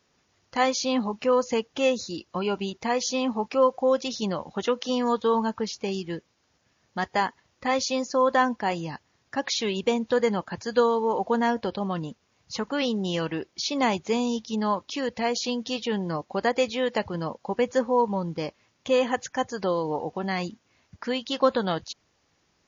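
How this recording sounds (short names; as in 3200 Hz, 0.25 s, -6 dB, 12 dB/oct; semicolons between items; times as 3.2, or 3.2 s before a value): noise floor -70 dBFS; spectral tilt -4.5 dB/oct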